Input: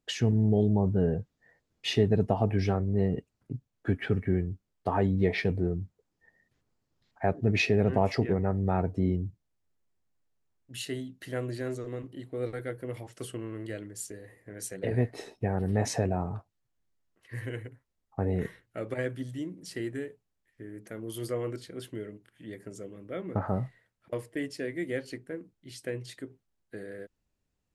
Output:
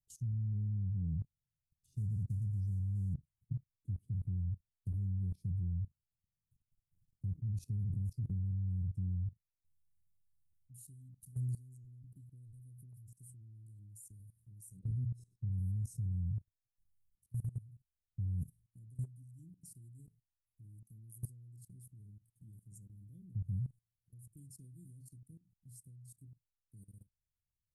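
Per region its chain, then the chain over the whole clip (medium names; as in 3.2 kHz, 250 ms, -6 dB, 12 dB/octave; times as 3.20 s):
1.86–3.16 s: block-companded coder 5-bit + low-pass 7.1 kHz + treble shelf 2.5 kHz -6 dB
14.79–15.52 s: distance through air 58 m + hum notches 60/120/180 Hz
whole clip: elliptic band-stop 140–9200 Hz, stop band 80 dB; peaking EQ 85 Hz +3 dB 0.45 oct; level held to a coarse grid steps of 19 dB; trim +3 dB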